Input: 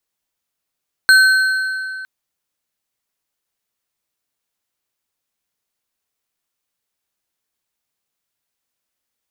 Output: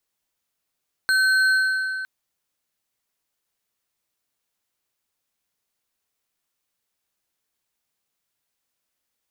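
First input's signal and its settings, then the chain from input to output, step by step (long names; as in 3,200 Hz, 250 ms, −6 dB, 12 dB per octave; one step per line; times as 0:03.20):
struck metal bar, length 0.96 s, lowest mode 1,530 Hz, modes 4, decay 2.59 s, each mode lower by 8 dB, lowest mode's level −5.5 dB
brickwall limiter −13 dBFS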